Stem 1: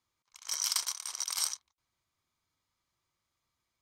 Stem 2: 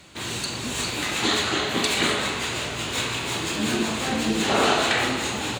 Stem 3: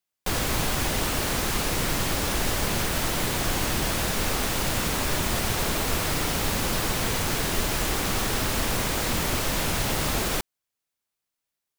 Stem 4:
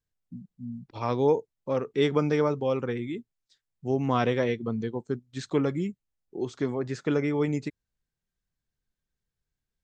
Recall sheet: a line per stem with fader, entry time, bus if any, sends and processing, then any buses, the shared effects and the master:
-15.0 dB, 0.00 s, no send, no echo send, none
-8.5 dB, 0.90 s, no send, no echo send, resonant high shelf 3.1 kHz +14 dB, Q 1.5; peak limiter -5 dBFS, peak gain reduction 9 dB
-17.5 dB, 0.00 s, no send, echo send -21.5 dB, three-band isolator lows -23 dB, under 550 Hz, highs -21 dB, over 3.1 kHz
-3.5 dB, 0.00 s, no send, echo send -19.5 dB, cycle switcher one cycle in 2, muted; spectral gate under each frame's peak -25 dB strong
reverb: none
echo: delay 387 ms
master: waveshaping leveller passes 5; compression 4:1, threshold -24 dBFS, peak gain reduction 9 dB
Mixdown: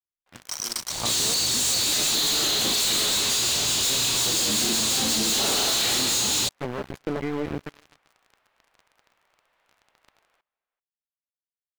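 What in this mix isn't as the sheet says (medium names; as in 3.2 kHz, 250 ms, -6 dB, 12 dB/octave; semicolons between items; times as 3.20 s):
stem 3 -17.5 dB -> -27.5 dB; stem 4 -3.5 dB -> -15.5 dB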